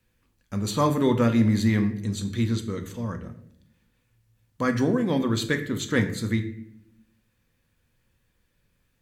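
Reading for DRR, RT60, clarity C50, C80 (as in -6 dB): 6.5 dB, 0.70 s, 11.5 dB, 14.5 dB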